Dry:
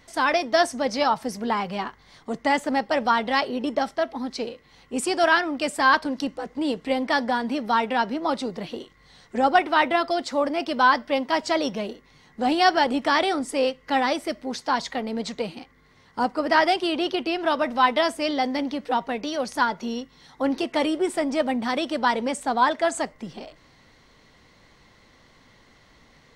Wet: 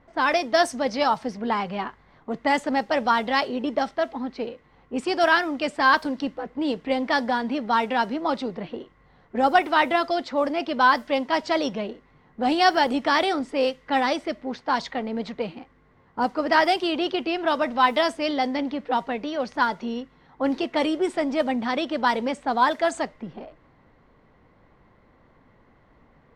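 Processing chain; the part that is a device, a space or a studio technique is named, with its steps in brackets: cassette deck with a dynamic noise filter (white noise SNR 34 dB; low-pass opened by the level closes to 1200 Hz, open at -16 dBFS)

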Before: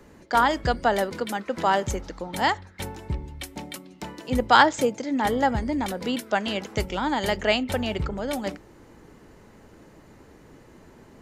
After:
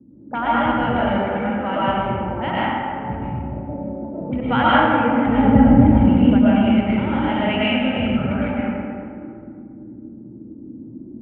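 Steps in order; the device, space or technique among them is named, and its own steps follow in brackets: LPF 5300 Hz; 5.26–6.56 tilt -3.5 dB/oct; envelope filter bass rig (envelope low-pass 260–2900 Hz up, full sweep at -23.5 dBFS; speaker cabinet 65–2200 Hz, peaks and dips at 120 Hz +7 dB, 230 Hz +7 dB, 430 Hz -8 dB, 670 Hz -5 dB, 1100 Hz -6 dB, 1800 Hz -9 dB); digital reverb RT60 2.3 s, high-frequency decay 0.45×, pre-delay 70 ms, DRR -9 dB; gain -4 dB

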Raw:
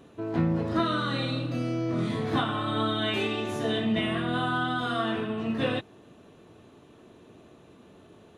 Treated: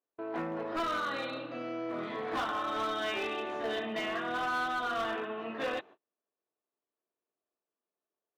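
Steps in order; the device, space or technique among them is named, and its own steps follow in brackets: walkie-talkie (BPF 510–2300 Hz; hard clip -29 dBFS, distortion -13 dB; gate -51 dBFS, range -36 dB)

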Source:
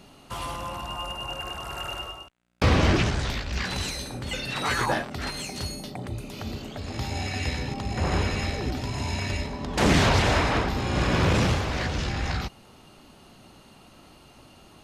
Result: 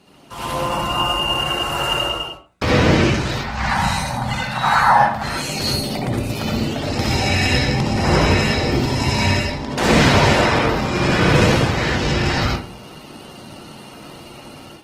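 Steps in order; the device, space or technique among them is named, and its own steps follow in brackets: 3.35–5.24 EQ curve 220 Hz 0 dB, 370 Hz -23 dB, 810 Hz +10 dB, 2800 Hz -6 dB; far-field microphone of a smart speaker (reverb RT60 0.45 s, pre-delay 61 ms, DRR -4 dB; HPF 140 Hz 6 dB/oct; AGC gain up to 10 dB; gain -1 dB; Opus 16 kbps 48000 Hz)

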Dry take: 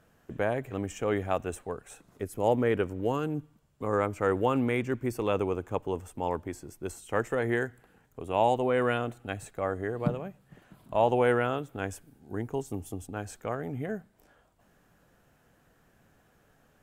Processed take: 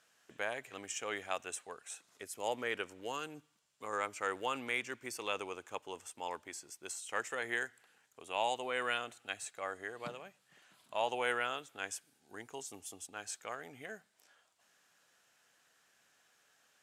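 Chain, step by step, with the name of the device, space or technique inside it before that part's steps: piezo pickup straight into a mixer (LPF 5900 Hz 12 dB/oct; differentiator); gain +10 dB

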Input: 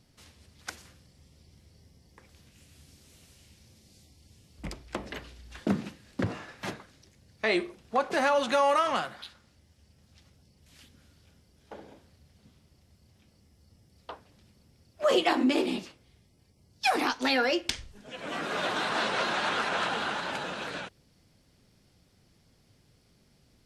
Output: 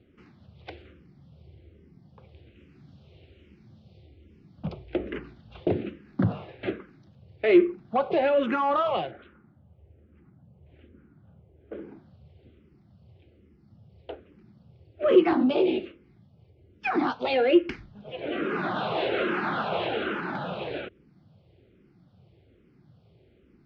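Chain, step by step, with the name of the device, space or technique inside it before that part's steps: 9.11–11.73 LPF 1600 Hz 12 dB/oct; barber-pole phaser into a guitar amplifier (endless phaser -1.2 Hz; soft clip -21.5 dBFS, distortion -18 dB; speaker cabinet 100–3400 Hz, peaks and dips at 250 Hz -3 dB, 360 Hz +6 dB, 980 Hz -6 dB, 1800 Hz -5 dB); tilt -2 dB/oct; gain +6 dB

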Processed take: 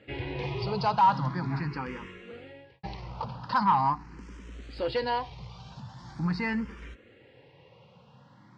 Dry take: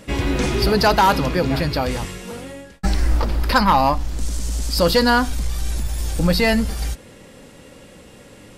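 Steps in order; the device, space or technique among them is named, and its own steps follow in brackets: barber-pole phaser into a guitar amplifier (endless phaser +0.42 Hz; soft clip -10 dBFS, distortion -19 dB; speaker cabinet 110–4100 Hz, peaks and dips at 130 Hz +9 dB, 270 Hz -4 dB, 610 Hz -6 dB, 950 Hz +7 dB, 3600 Hz -5 dB); gain -8.5 dB

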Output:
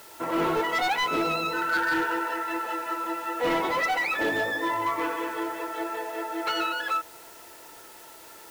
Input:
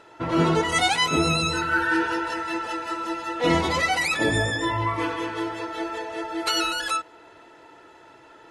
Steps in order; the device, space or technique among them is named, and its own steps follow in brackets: aircraft radio (BPF 350–2400 Hz; hard clip -21 dBFS, distortion -14 dB; white noise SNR 21 dB)

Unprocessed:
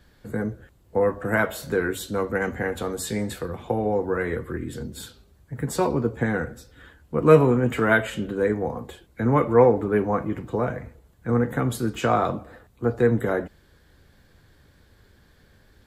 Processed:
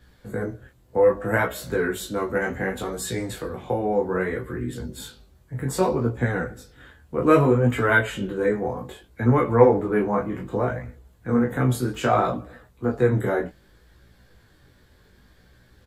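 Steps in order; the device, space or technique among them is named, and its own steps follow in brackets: double-tracked vocal (doubler 16 ms -5 dB; chorus 0.64 Hz, delay 16.5 ms, depth 7.7 ms); gain +2.5 dB

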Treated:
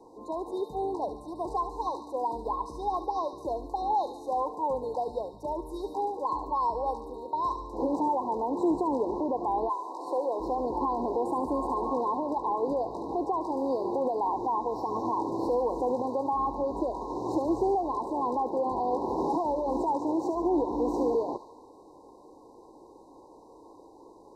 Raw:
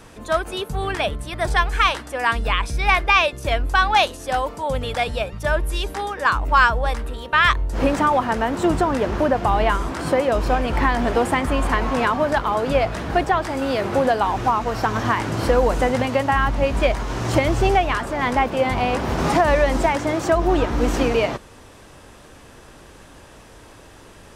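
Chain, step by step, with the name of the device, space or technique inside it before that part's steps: 9.68–10.39 HPF 880 Hz -> 390 Hz 12 dB/oct; FFT band-reject 1100–3700 Hz; DJ mixer with the lows and highs turned down (three-band isolator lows -23 dB, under 330 Hz, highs -21 dB, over 2000 Hz; limiter -18 dBFS, peak gain reduction 9.5 dB); thirty-one-band EQ 315 Hz +6 dB, 630 Hz -11 dB, 1250 Hz -8 dB, 3150 Hz -11 dB, 10000 Hz -4 dB; thin delay 72 ms, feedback 62%, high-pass 1500 Hz, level -6 dB

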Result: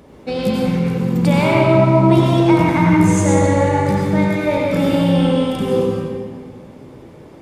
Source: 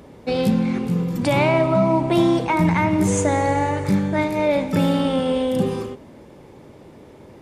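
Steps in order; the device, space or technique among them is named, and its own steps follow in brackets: stairwell (reverb RT60 1.8 s, pre-delay 83 ms, DRR -2.5 dB); gain -1 dB

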